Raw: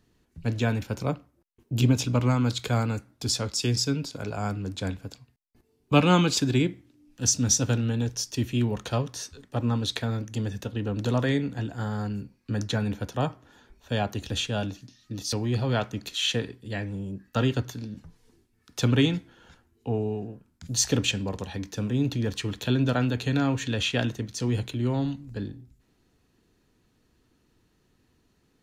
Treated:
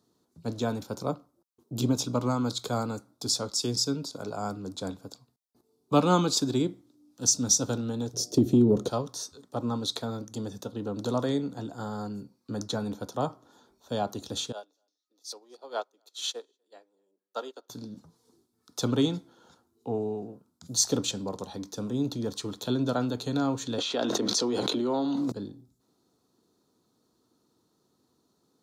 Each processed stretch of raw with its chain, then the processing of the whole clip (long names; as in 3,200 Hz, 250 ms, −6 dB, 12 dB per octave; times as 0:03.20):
0:08.13–0:08.88: low shelf with overshoot 600 Hz +13.5 dB, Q 1.5 + downward compressor, threshold −12 dBFS + hum with harmonics 120 Hz, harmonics 6, −50 dBFS −5 dB per octave
0:14.52–0:17.70: high-pass filter 380 Hz 24 dB per octave + single-tap delay 247 ms −21 dB + expander for the loud parts 2.5 to 1, over −41 dBFS
0:23.78–0:25.32: high-pass filter 57 Hz + three-way crossover with the lows and the highs turned down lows −23 dB, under 240 Hz, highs −13 dB, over 5,600 Hz + envelope flattener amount 100%
whole clip: Bessel high-pass filter 230 Hz, order 2; flat-topped bell 2,200 Hz −14.5 dB 1.1 octaves